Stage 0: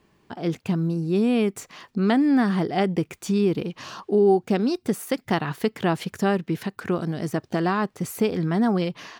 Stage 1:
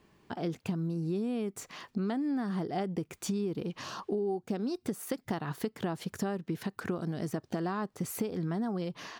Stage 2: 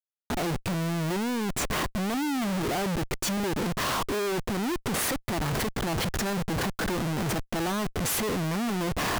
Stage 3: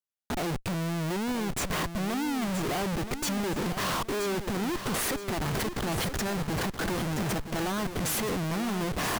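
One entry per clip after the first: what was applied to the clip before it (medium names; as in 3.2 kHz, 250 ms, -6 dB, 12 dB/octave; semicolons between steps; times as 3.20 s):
dynamic bell 2.4 kHz, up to -6 dB, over -44 dBFS, Q 1.3; compression, threshold -28 dBFS, peak gain reduction 13 dB; trim -2 dB
Schmitt trigger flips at -46 dBFS; waveshaping leveller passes 1; trim +4.5 dB
feedback delay 974 ms, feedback 34%, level -9.5 dB; trim -2 dB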